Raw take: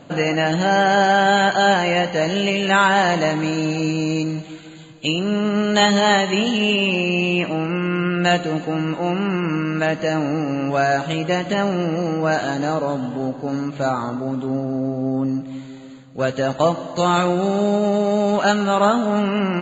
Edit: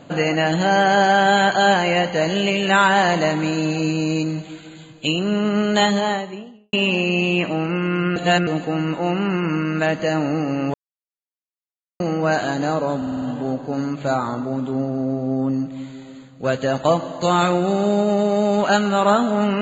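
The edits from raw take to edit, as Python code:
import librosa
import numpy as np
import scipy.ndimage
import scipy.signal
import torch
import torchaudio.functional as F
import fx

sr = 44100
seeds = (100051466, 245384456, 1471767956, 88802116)

y = fx.studio_fade_out(x, sr, start_s=5.58, length_s=1.15)
y = fx.edit(y, sr, fx.reverse_span(start_s=8.16, length_s=0.31),
    fx.silence(start_s=10.74, length_s=1.26),
    fx.stutter(start_s=12.97, slice_s=0.05, count=6), tone=tone)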